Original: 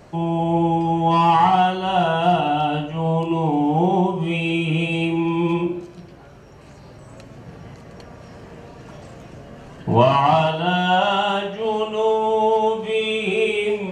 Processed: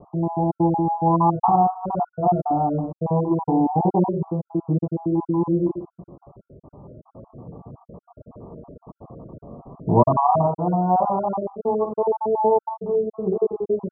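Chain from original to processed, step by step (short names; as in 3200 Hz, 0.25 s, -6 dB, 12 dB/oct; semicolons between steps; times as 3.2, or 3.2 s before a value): random spectral dropouts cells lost 38%; steep low-pass 1200 Hz 96 dB/oct; bell 280 Hz +3.5 dB 2.5 oct; gain -2 dB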